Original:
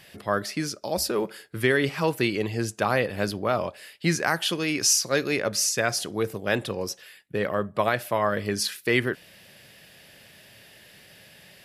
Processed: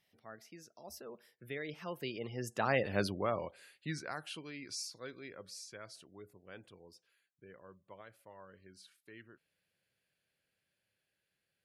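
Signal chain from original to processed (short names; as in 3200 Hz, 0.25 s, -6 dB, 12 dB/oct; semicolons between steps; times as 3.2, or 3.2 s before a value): Doppler pass-by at 2.93, 28 m/s, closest 7.8 m; spectral gate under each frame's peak -30 dB strong; gain -5.5 dB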